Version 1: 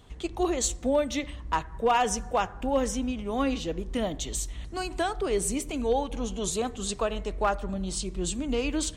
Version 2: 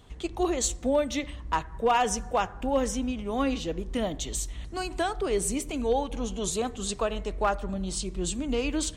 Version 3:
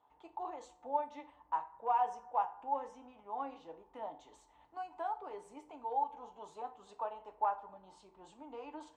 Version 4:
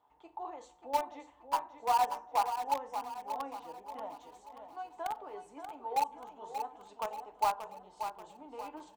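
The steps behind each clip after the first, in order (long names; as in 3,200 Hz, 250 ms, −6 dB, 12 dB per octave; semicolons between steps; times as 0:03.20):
no processing that can be heard
resonant band-pass 880 Hz, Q 7.4; feedback delay network reverb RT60 0.31 s, low-frequency decay 0.9×, high-frequency decay 1×, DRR 6 dB
in parallel at −7.5 dB: bit reduction 5 bits; on the sum: repeating echo 583 ms, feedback 45%, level −8.5 dB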